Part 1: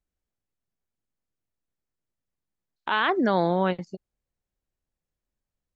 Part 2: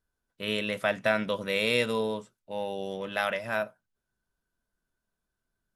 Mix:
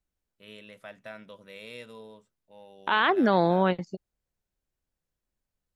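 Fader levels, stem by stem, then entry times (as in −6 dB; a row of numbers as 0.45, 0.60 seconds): +0.5, −17.5 decibels; 0.00, 0.00 seconds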